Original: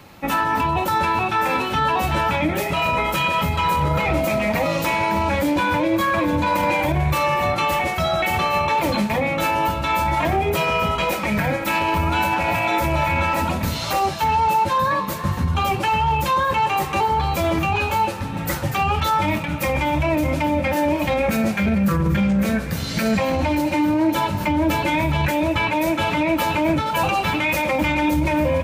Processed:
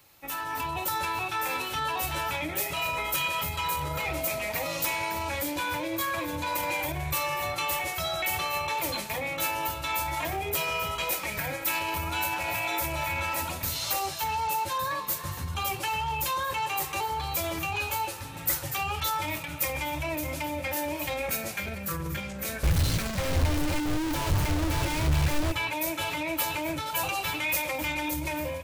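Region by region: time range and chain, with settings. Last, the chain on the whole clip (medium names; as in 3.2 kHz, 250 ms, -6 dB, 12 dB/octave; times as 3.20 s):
22.63–25.52 s: one-bit comparator + RIAA curve playback
whole clip: pre-emphasis filter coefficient 0.8; level rider gain up to 6 dB; peaking EQ 210 Hz -13 dB 0.4 oct; trim -4.5 dB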